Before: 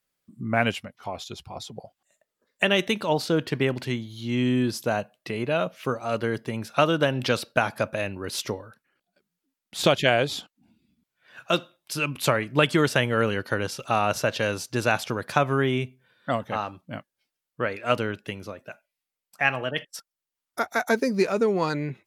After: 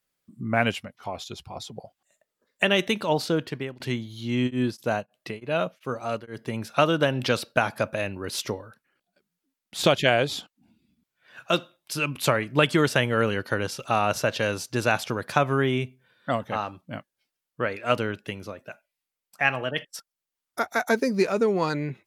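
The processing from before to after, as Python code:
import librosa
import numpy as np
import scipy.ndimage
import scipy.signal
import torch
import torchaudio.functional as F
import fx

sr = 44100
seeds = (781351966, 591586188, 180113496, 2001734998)

y = fx.tremolo_abs(x, sr, hz=fx.line((4.46, 4.1), (6.58, 1.7)), at=(4.46, 6.58), fade=0.02)
y = fx.edit(y, sr, fx.fade_out_to(start_s=3.26, length_s=0.54, floor_db=-21.0), tone=tone)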